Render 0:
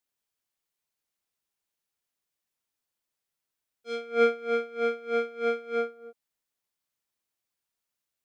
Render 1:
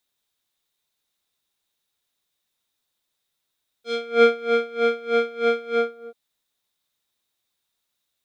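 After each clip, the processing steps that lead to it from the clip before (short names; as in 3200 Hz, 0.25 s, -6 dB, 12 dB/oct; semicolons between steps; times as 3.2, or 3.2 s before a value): bell 3700 Hz +12 dB 0.23 oct; gain +6.5 dB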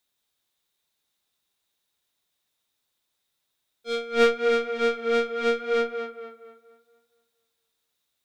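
one diode to ground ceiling -22.5 dBFS; on a send: tape echo 0.235 s, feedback 43%, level -6.5 dB, low-pass 2800 Hz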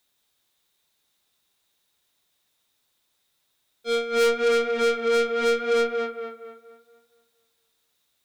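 soft clip -23.5 dBFS, distortion -10 dB; gain +6 dB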